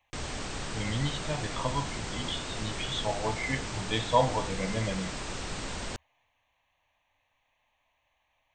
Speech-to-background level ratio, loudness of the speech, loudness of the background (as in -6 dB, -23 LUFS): 4.0 dB, -32.5 LUFS, -36.5 LUFS